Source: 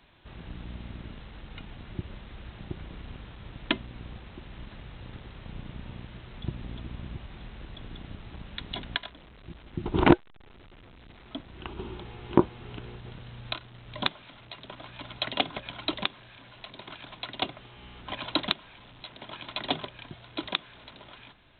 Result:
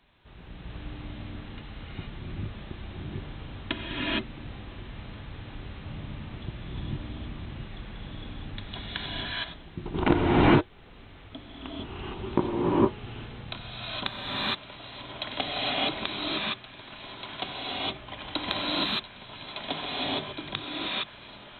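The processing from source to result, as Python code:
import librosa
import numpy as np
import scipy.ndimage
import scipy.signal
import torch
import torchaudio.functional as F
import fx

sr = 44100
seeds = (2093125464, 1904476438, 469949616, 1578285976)

y = fx.rev_gated(x, sr, seeds[0], gate_ms=490, shape='rising', drr_db=-7.5)
y = y * librosa.db_to_amplitude(-5.0)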